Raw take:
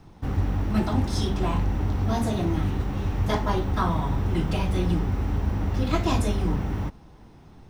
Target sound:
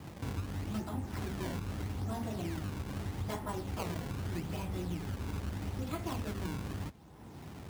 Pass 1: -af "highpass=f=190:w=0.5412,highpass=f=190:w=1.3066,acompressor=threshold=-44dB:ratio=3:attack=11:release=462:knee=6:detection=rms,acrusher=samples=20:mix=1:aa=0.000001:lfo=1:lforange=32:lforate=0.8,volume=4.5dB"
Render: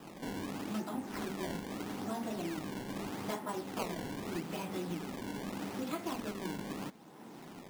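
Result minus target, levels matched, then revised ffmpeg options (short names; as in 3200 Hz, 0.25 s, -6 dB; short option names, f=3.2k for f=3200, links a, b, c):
125 Hz band -8.5 dB
-af "highpass=f=65:w=0.5412,highpass=f=65:w=1.3066,acompressor=threshold=-44dB:ratio=3:attack=11:release=462:knee=6:detection=rms,acrusher=samples=20:mix=1:aa=0.000001:lfo=1:lforange=32:lforate=0.8,volume=4.5dB"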